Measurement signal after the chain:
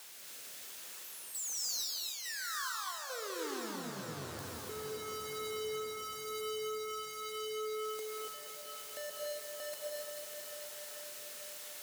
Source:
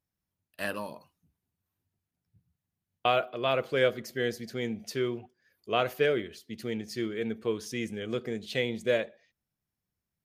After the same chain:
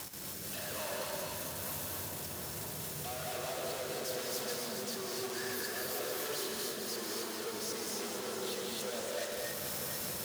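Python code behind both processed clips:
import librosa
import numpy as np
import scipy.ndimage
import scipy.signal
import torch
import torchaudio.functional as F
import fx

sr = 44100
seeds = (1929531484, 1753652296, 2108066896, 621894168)

p1 = np.sign(x) * np.sqrt(np.mean(np.square(x)))
p2 = fx.rotary(p1, sr, hz=1.1)
p3 = fx.level_steps(p2, sr, step_db=13)
p4 = fx.highpass(p3, sr, hz=690.0, slope=6)
p5 = p4 + fx.echo_alternate(p4, sr, ms=222, hz=960.0, feedback_pct=84, wet_db=-6.0, dry=0)
p6 = fx.dynamic_eq(p5, sr, hz=2300.0, q=1.0, threshold_db=-56.0, ratio=4.0, max_db=-6)
y = fx.rev_gated(p6, sr, seeds[0], gate_ms=310, shape='rising', drr_db=-1.5)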